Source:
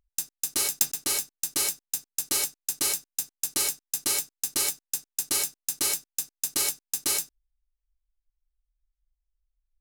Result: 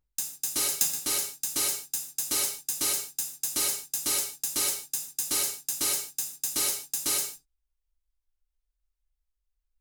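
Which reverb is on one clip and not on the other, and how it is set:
reverb whose tail is shaped and stops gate 180 ms falling, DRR −0.5 dB
level −3.5 dB

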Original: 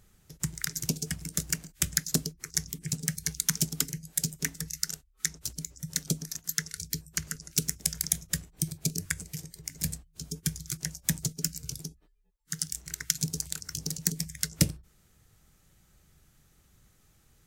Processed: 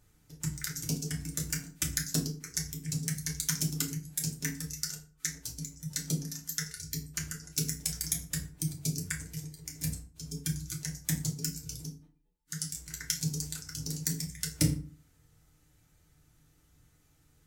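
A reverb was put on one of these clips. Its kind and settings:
feedback delay network reverb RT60 0.41 s, low-frequency decay 1.3×, high-frequency decay 0.7×, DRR −1 dB
level −6.5 dB

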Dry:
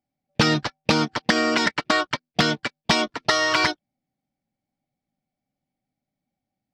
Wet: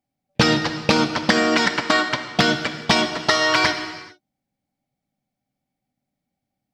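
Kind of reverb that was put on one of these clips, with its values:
reverb whose tail is shaped and stops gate 470 ms falling, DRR 6.5 dB
level +2 dB

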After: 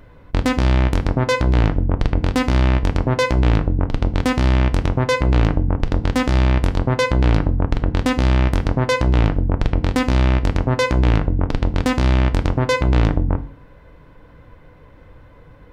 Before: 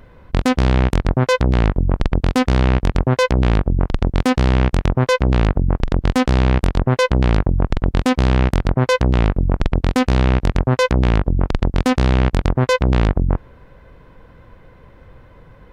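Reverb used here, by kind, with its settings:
feedback delay network reverb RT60 0.4 s, low-frequency decay 1.5×, high-frequency decay 0.9×, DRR 8.5 dB
level −1.5 dB

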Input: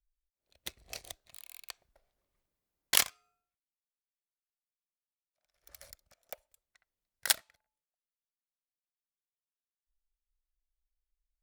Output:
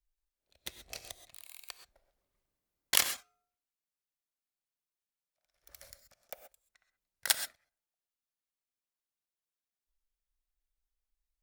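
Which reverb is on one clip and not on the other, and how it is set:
reverb whose tail is shaped and stops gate 150 ms rising, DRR 9 dB
level −1 dB

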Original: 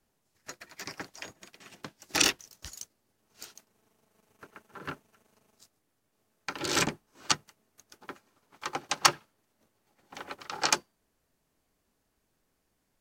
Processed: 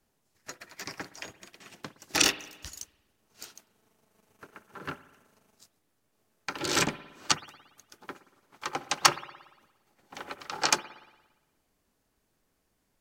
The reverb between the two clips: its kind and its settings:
spring reverb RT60 1.1 s, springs 57 ms, chirp 70 ms, DRR 15 dB
level +1 dB

